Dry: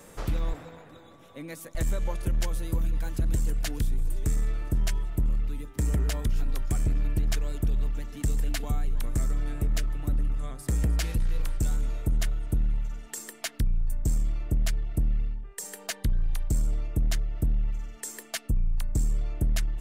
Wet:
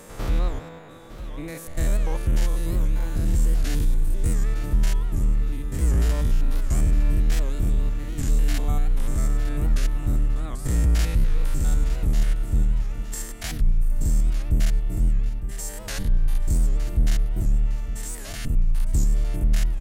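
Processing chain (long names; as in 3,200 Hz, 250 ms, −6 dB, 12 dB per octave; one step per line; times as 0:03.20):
spectrum averaged block by block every 100 ms
repeating echo 909 ms, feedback 35%, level −13 dB
wow of a warped record 78 rpm, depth 160 cents
level +6.5 dB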